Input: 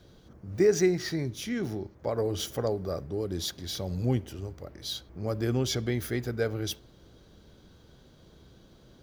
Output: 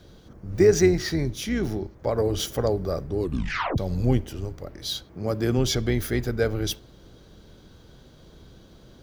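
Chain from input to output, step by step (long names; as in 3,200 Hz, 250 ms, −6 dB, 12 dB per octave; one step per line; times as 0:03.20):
sub-octave generator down 2 octaves, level −6 dB
0:03.18: tape stop 0.60 s
0:05.03–0:05.58: high-pass filter 100 Hz
level +5 dB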